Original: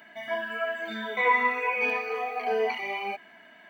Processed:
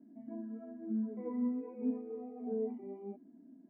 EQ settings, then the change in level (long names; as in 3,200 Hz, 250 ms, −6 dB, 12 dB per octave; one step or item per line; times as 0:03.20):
flat-topped band-pass 240 Hz, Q 1.3
high-frequency loss of the air 320 metres
parametric band 270 Hz +14.5 dB 0.55 octaves
−1.5 dB